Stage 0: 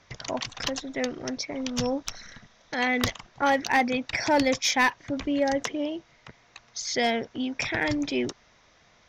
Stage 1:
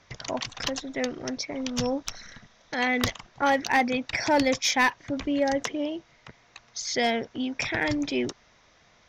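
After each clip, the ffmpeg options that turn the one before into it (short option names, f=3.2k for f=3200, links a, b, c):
-af anull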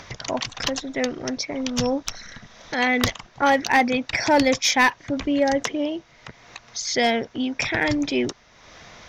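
-af "acompressor=mode=upward:threshold=-38dB:ratio=2.5,volume=4.5dB"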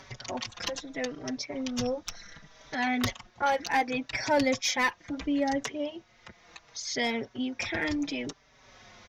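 -filter_complex "[0:a]asplit=2[a][b];[b]adelay=4.8,afreqshift=-0.7[c];[a][c]amix=inputs=2:normalize=1,volume=-5dB"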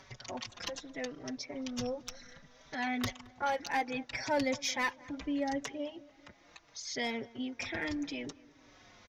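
-filter_complex "[0:a]asplit=2[a][b];[b]adelay=220,lowpass=f=1.7k:p=1,volume=-21dB,asplit=2[c][d];[d]adelay=220,lowpass=f=1.7k:p=1,volume=0.55,asplit=2[e][f];[f]adelay=220,lowpass=f=1.7k:p=1,volume=0.55,asplit=2[g][h];[h]adelay=220,lowpass=f=1.7k:p=1,volume=0.55[i];[a][c][e][g][i]amix=inputs=5:normalize=0,volume=-6dB"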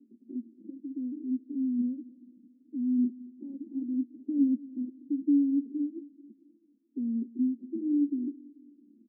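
-filter_complex "[0:a]asplit=2[a][b];[b]aeval=exprs='(mod(14.1*val(0)+1,2)-1)/14.1':c=same,volume=-3.5dB[c];[a][c]amix=inputs=2:normalize=0,asuperpass=centerf=270:order=8:qfactor=2.2,volume=6.5dB"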